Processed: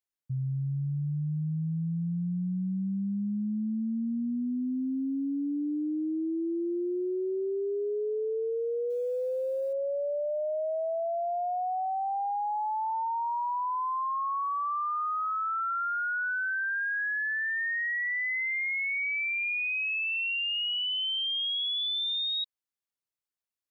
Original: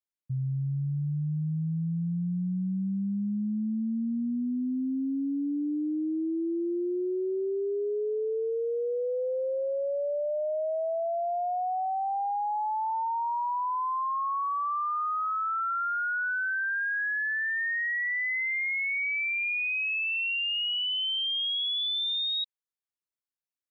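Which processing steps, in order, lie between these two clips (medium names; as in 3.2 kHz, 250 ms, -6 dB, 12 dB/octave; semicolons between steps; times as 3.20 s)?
8.90–9.73 s: companded quantiser 8-bit; trim -1 dB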